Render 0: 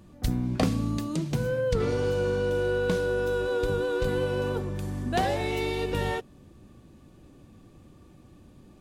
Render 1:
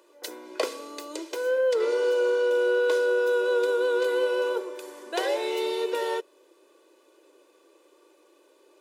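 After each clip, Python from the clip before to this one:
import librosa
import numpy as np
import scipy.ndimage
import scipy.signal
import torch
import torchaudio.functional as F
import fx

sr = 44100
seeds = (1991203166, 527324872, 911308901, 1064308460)

y = scipy.signal.sosfilt(scipy.signal.butter(8, 320.0, 'highpass', fs=sr, output='sos'), x)
y = y + 0.66 * np.pad(y, (int(2.0 * sr / 1000.0), 0))[:len(y)]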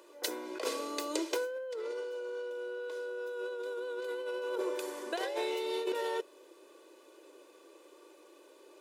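y = fx.over_compress(x, sr, threshold_db=-32.0, ratio=-1.0)
y = y * librosa.db_to_amplitude(-4.5)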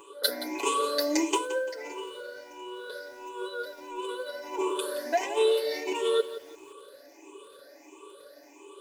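y = fx.spec_ripple(x, sr, per_octave=0.68, drift_hz=1.5, depth_db=21)
y = y + 0.99 * np.pad(y, (int(7.1 * sr / 1000.0), 0))[:len(y)]
y = fx.echo_crushed(y, sr, ms=172, feedback_pct=35, bits=8, wet_db=-13.5)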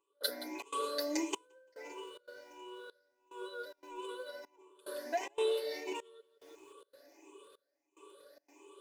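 y = fx.step_gate(x, sr, bpm=145, pattern='..xxxx.xxxxxx..', floor_db=-24.0, edge_ms=4.5)
y = y * librosa.db_to_amplitude(-8.5)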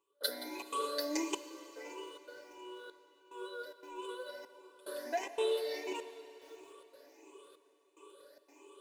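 y = fx.rev_plate(x, sr, seeds[0], rt60_s=3.7, hf_ratio=0.9, predelay_ms=0, drr_db=11.0)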